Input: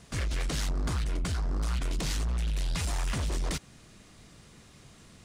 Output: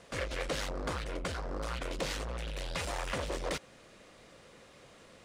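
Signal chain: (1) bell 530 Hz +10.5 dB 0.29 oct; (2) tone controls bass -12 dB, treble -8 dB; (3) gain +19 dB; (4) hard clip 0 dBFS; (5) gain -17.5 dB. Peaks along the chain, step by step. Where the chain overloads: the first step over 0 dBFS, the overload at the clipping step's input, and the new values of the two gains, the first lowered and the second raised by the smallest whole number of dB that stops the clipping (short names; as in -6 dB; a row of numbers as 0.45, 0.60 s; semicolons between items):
-22.0, -22.5, -3.5, -3.5, -21.0 dBFS; no overload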